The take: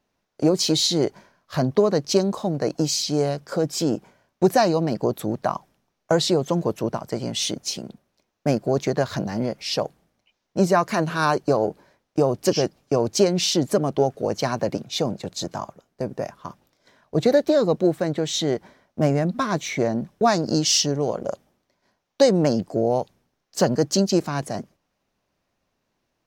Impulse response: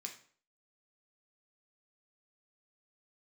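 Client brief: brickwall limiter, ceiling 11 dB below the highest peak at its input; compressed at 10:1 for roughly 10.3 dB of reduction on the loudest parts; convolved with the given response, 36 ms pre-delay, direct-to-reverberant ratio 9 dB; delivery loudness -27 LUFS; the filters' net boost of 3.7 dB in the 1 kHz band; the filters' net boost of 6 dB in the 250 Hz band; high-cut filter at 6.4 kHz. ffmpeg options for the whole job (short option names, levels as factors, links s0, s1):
-filter_complex "[0:a]lowpass=6400,equalizer=f=250:t=o:g=8,equalizer=f=1000:t=o:g=4.5,acompressor=threshold=0.112:ratio=10,alimiter=limit=0.133:level=0:latency=1,asplit=2[s0][s1];[1:a]atrim=start_sample=2205,adelay=36[s2];[s1][s2]afir=irnorm=-1:irlink=0,volume=0.501[s3];[s0][s3]amix=inputs=2:normalize=0,volume=1.12"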